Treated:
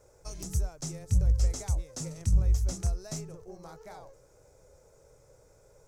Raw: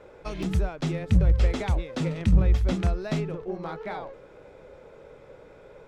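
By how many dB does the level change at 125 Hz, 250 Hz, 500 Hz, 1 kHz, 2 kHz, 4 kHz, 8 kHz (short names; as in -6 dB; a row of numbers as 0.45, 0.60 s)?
-5.0 dB, -13.5 dB, -12.5 dB, -12.5 dB, -16.0 dB, -5.5 dB, n/a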